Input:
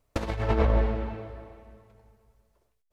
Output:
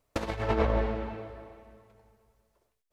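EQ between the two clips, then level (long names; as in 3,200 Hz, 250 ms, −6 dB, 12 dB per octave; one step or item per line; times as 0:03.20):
low-shelf EQ 140 Hz −7.5 dB
0.0 dB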